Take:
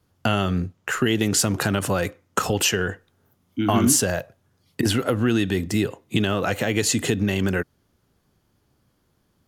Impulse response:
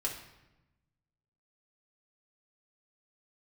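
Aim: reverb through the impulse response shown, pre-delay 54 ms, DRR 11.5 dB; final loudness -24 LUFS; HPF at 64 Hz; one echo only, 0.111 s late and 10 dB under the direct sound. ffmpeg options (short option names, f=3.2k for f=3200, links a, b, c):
-filter_complex "[0:a]highpass=64,aecho=1:1:111:0.316,asplit=2[a][b];[1:a]atrim=start_sample=2205,adelay=54[c];[b][c]afir=irnorm=-1:irlink=0,volume=-14.5dB[d];[a][d]amix=inputs=2:normalize=0,volume=-2dB"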